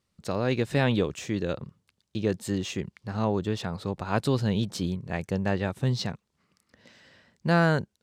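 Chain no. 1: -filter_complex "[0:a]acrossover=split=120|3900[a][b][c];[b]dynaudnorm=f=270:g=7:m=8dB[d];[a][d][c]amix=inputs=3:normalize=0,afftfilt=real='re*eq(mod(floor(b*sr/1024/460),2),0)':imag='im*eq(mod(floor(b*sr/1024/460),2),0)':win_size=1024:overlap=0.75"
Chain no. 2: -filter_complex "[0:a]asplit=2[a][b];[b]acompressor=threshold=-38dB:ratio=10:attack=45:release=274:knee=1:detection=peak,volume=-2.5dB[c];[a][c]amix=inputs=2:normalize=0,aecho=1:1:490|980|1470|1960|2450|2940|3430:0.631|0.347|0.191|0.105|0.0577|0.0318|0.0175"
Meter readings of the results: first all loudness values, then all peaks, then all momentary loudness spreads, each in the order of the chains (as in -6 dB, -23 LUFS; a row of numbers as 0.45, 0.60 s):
-25.0, -26.0 LUFS; -7.5, -10.0 dBFS; 10, 9 LU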